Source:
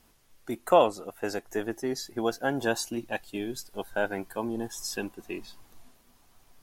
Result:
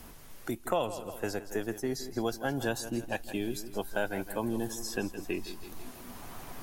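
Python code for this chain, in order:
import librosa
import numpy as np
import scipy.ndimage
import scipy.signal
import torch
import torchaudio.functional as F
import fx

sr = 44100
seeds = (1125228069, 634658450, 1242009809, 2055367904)

p1 = fx.low_shelf(x, sr, hz=110.0, db=11.0)
p2 = fx.rider(p1, sr, range_db=4, speed_s=2.0)
p3 = fx.high_shelf(p2, sr, hz=8800.0, db=7.5)
p4 = p3 + fx.echo_feedback(p3, sr, ms=163, feedback_pct=41, wet_db=-14.5, dry=0)
p5 = fx.band_squash(p4, sr, depth_pct=70)
y = p5 * 10.0 ** (-5.0 / 20.0)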